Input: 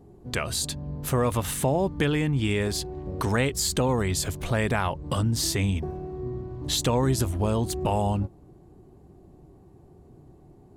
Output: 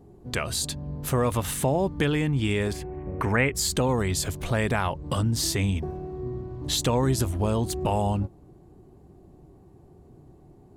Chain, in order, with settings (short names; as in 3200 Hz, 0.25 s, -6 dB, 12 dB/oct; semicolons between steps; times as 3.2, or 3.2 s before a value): 2.73–3.56 resonant high shelf 3000 Hz -9.5 dB, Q 3